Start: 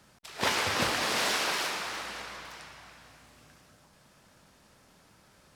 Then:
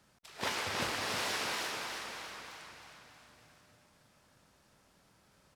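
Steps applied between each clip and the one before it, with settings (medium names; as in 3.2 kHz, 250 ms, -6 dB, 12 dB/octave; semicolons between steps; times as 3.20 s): feedback delay 315 ms, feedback 49%, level -7 dB; trim -7.5 dB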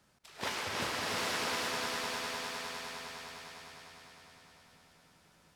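echo with a slow build-up 101 ms, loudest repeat 5, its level -10 dB; trim -1.5 dB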